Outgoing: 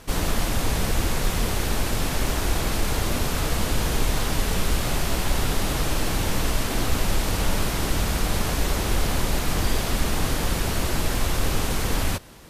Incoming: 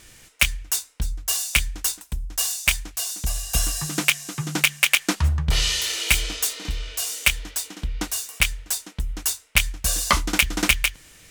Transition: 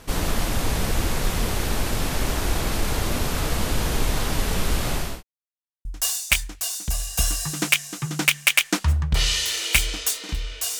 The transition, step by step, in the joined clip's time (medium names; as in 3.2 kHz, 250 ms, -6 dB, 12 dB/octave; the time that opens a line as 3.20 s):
outgoing
4.83–5.23 s: fade out equal-power
5.23–5.85 s: mute
5.85 s: go over to incoming from 2.21 s